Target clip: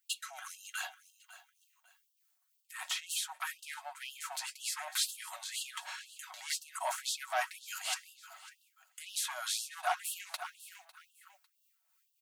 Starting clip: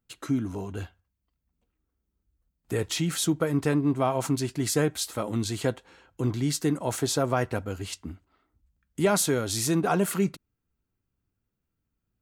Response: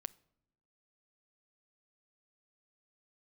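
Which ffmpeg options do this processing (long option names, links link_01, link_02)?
-filter_complex "[0:a]highshelf=frequency=4100:gain=7.5,acrossover=split=2600[link_01][link_02];[link_02]acompressor=threshold=-41dB:ratio=4:attack=1:release=60[link_03];[link_01][link_03]amix=inputs=2:normalize=0,asplit=2[link_04][link_05];[link_05]aeval=exprs='0.282*sin(PI/2*3.16*val(0)/0.282)':channel_layout=same,volume=-6.5dB[link_06];[link_04][link_06]amix=inputs=2:normalize=0,acrossover=split=550[link_07][link_08];[link_07]aeval=exprs='val(0)*(1-0.5/2+0.5/2*cos(2*PI*3.3*n/s))':channel_layout=same[link_09];[link_08]aeval=exprs='val(0)*(1-0.5/2-0.5/2*cos(2*PI*3.3*n/s))':channel_layout=same[link_10];[link_09][link_10]amix=inputs=2:normalize=0,aecho=1:1:551|1102:0.1|0.028,areverse,acompressor=threshold=-27dB:ratio=12,areverse,aecho=1:1:5.4:0.48,afftfilt=real='re*gte(b*sr/1024,570*pow(2700/570,0.5+0.5*sin(2*PI*2*pts/sr)))':imag='im*gte(b*sr/1024,570*pow(2700/570,0.5+0.5*sin(2*PI*2*pts/sr)))':win_size=1024:overlap=0.75"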